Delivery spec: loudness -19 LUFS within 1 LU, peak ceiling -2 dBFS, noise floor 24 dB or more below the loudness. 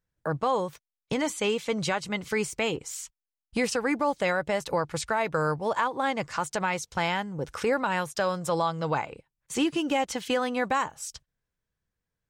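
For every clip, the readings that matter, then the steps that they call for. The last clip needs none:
loudness -28.5 LUFS; peak -13.0 dBFS; loudness target -19.0 LUFS
-> gain +9.5 dB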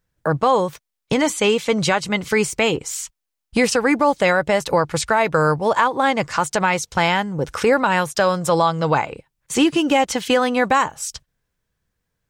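loudness -19.0 LUFS; peak -3.5 dBFS; noise floor -80 dBFS

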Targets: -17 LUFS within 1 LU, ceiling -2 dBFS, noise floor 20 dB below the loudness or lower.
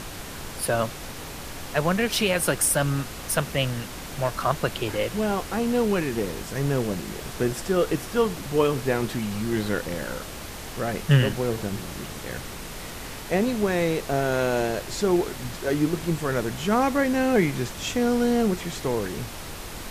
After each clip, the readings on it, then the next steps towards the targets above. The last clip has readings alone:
noise floor -37 dBFS; noise floor target -46 dBFS; loudness -25.5 LUFS; peak -7.0 dBFS; loudness target -17.0 LUFS
-> noise print and reduce 9 dB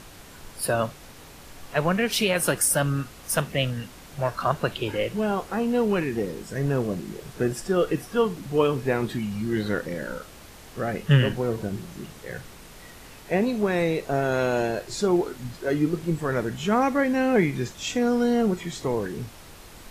noise floor -46 dBFS; loudness -25.5 LUFS; peak -7.0 dBFS; loudness target -17.0 LUFS
-> gain +8.5 dB; limiter -2 dBFS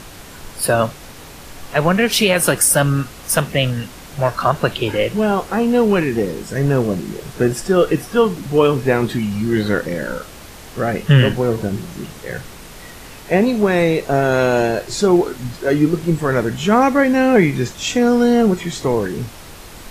loudness -17.0 LUFS; peak -2.0 dBFS; noise floor -37 dBFS

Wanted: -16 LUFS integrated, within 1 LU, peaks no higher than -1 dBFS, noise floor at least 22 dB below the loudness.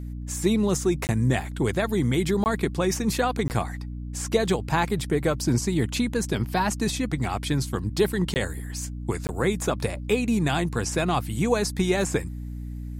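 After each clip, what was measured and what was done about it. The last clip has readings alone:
dropouts 5; longest dropout 19 ms; hum 60 Hz; harmonics up to 300 Hz; hum level -31 dBFS; loudness -25.5 LUFS; peak -8.5 dBFS; loudness target -16.0 LUFS
-> interpolate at 1.07/2.44/3.48/8.34/9.27, 19 ms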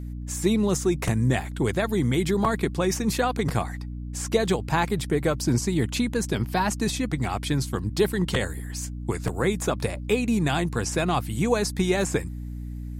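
dropouts 0; hum 60 Hz; harmonics up to 300 Hz; hum level -31 dBFS
-> notches 60/120/180/240/300 Hz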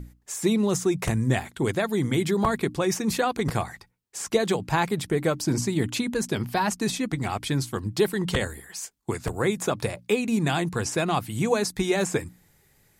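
hum none; loudness -26.0 LUFS; peak -8.0 dBFS; loudness target -16.0 LUFS
-> gain +10 dB; limiter -1 dBFS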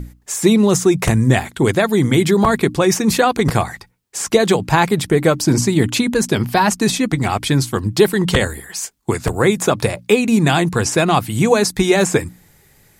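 loudness -16.0 LUFS; peak -1.0 dBFS; noise floor -52 dBFS

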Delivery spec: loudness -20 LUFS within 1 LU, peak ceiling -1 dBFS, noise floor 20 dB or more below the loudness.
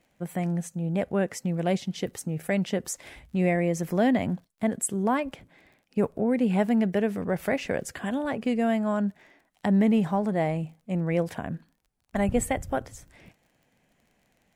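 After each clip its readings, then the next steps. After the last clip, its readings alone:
ticks 27/s; loudness -27.5 LUFS; peak -12.5 dBFS; loudness target -20.0 LUFS
-> de-click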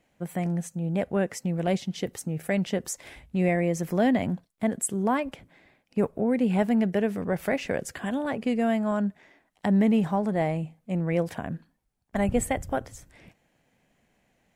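ticks 0.21/s; loudness -27.5 LUFS; peak -12.5 dBFS; loudness target -20.0 LUFS
-> gain +7.5 dB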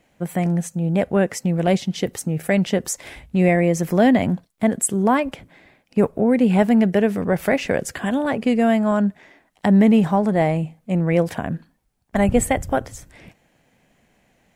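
loudness -20.0 LUFS; peak -5.0 dBFS; noise floor -64 dBFS

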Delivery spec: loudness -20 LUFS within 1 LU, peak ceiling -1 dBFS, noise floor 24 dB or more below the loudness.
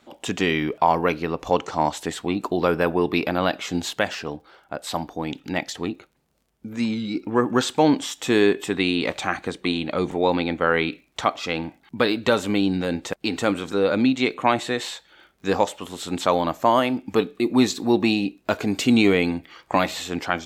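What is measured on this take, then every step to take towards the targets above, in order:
ticks 40/s; loudness -23.0 LUFS; peak -4.5 dBFS; loudness target -20.0 LUFS
-> de-click; gain +3 dB

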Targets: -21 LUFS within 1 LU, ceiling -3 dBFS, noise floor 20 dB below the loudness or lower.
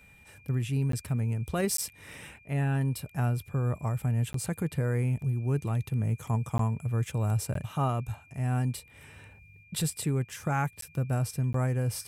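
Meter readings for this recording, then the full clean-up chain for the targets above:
dropouts 7; longest dropout 13 ms; steady tone 2400 Hz; tone level -56 dBFS; loudness -30.5 LUFS; peak -17.0 dBFS; loudness target -21.0 LUFS
-> interpolate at 0.92/1.77/4.33/6.58/7.54/10.81/11.53, 13 ms; notch 2400 Hz, Q 30; gain +9.5 dB

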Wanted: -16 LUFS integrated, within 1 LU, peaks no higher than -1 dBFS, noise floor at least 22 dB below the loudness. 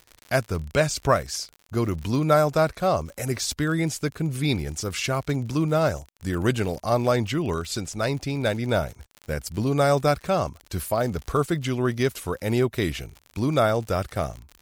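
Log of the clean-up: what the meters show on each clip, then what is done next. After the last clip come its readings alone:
ticks 53/s; loudness -25.0 LUFS; peak -6.0 dBFS; loudness target -16.0 LUFS
-> de-click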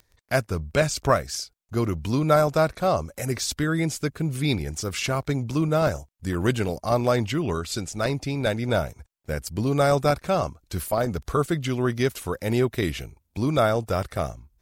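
ticks 0.75/s; loudness -25.0 LUFS; peak -6.0 dBFS; loudness target -16.0 LUFS
-> gain +9 dB; limiter -1 dBFS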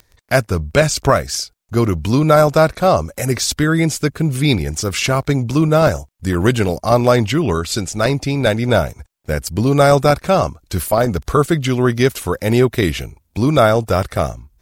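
loudness -16.5 LUFS; peak -1.0 dBFS; noise floor -59 dBFS

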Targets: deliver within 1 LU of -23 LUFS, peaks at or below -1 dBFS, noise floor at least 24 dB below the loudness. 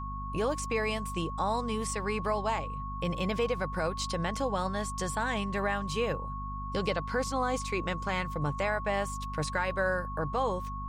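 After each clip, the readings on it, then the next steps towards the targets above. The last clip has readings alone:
hum 50 Hz; harmonics up to 250 Hz; hum level -36 dBFS; steady tone 1100 Hz; tone level -38 dBFS; loudness -32.0 LUFS; peak -17.5 dBFS; loudness target -23.0 LUFS
-> de-hum 50 Hz, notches 5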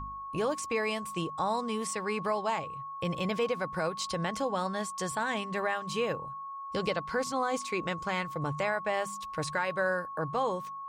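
hum none; steady tone 1100 Hz; tone level -38 dBFS
-> notch 1100 Hz, Q 30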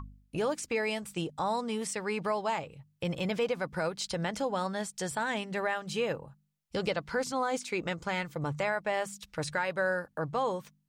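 steady tone none; loudness -33.0 LUFS; peak -19.0 dBFS; loudness target -23.0 LUFS
-> gain +10 dB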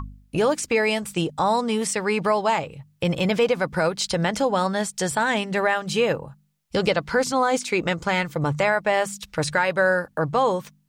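loudness -23.0 LUFS; peak -9.0 dBFS; noise floor -61 dBFS

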